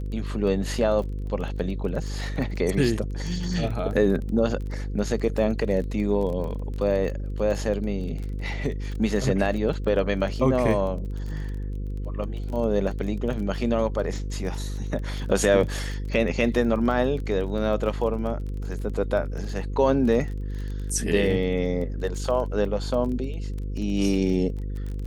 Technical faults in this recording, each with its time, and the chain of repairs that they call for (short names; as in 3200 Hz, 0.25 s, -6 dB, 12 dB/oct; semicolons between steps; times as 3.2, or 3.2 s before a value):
buzz 50 Hz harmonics 10 -30 dBFS
crackle 22/s -32 dBFS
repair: de-click; de-hum 50 Hz, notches 10